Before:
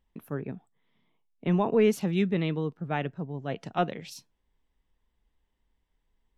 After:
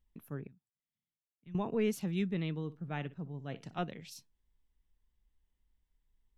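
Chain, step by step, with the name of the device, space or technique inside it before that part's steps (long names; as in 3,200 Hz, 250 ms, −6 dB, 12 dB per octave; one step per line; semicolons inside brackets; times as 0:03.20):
0:00.47–0:01.55: guitar amp tone stack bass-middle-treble 6-0-2
smiley-face EQ (low-shelf EQ 99 Hz +8.5 dB; parametric band 640 Hz −4 dB 1.9 octaves; high-shelf EQ 6,100 Hz +5 dB)
0:02.56–0:03.78: flutter between parallel walls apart 10.4 metres, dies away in 0.22 s
level −8 dB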